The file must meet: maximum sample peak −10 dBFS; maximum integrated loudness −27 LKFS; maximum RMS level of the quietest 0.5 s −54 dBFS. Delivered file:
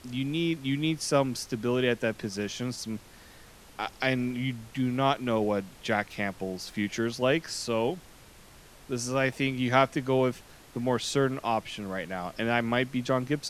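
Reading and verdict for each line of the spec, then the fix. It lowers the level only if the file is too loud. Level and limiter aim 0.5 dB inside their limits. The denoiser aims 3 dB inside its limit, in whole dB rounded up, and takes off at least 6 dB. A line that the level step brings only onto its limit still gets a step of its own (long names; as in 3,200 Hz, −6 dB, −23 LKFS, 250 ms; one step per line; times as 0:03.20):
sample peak −6.0 dBFS: out of spec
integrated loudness −29.0 LKFS: in spec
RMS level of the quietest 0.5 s −52 dBFS: out of spec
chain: broadband denoise 6 dB, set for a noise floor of −52 dBFS
brickwall limiter −10.5 dBFS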